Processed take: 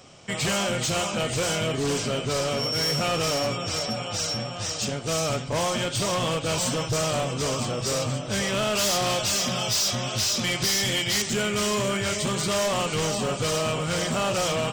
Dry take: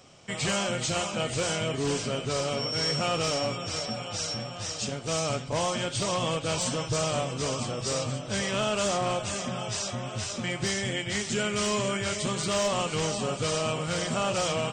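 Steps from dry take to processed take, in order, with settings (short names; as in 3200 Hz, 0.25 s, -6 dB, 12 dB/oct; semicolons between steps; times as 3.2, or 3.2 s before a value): 8.75–11.22 bell 4800 Hz +12.5 dB 1.4 oct; hard clip -26 dBFS, distortion -11 dB; gain +4.5 dB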